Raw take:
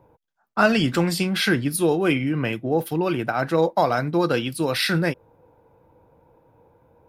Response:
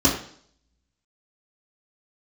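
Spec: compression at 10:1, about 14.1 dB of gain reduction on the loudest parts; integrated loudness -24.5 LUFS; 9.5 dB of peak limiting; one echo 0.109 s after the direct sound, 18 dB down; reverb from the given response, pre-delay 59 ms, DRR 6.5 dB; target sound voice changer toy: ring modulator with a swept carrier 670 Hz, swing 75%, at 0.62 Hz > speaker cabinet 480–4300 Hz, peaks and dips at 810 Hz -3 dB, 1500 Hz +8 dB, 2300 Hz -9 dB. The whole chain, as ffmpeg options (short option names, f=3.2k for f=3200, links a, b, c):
-filter_complex "[0:a]acompressor=threshold=-28dB:ratio=10,alimiter=level_in=2dB:limit=-24dB:level=0:latency=1,volume=-2dB,aecho=1:1:109:0.126,asplit=2[a][b];[1:a]atrim=start_sample=2205,adelay=59[c];[b][c]afir=irnorm=-1:irlink=0,volume=-23.5dB[d];[a][d]amix=inputs=2:normalize=0,aeval=exprs='val(0)*sin(2*PI*670*n/s+670*0.75/0.62*sin(2*PI*0.62*n/s))':c=same,highpass=480,equalizer=f=810:t=q:w=4:g=-3,equalizer=f=1.5k:t=q:w=4:g=8,equalizer=f=2.3k:t=q:w=4:g=-9,lowpass=f=4.3k:w=0.5412,lowpass=f=4.3k:w=1.3066,volume=10dB"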